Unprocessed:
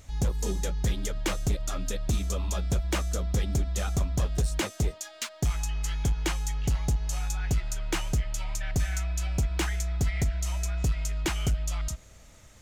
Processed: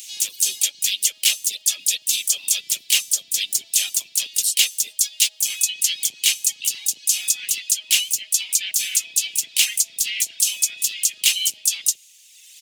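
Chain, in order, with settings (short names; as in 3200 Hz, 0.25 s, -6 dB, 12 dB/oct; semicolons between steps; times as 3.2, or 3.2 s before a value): octaver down 2 oct, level +3 dB; reverb removal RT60 1.7 s; Bessel high-pass 170 Hz, order 6; differentiator; harmoniser -5 st -15 dB, +5 st -6 dB; resonant high shelf 1900 Hz +13.5 dB, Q 3; in parallel at +2 dB: limiter -14 dBFS, peak gain reduction 8.5 dB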